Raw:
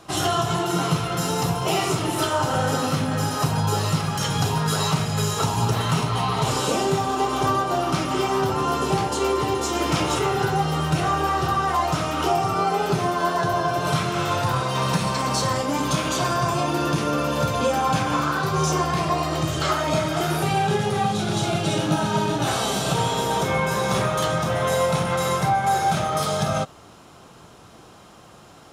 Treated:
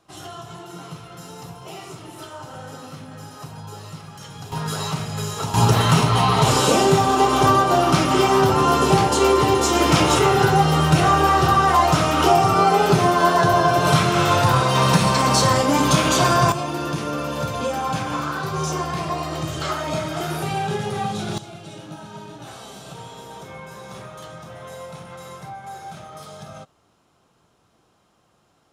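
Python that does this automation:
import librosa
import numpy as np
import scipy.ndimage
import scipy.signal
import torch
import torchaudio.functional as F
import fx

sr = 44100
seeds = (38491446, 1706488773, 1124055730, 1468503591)

y = fx.gain(x, sr, db=fx.steps((0.0, -14.5), (4.52, -4.0), (5.54, 6.0), (16.52, -3.0), (21.38, -15.5)))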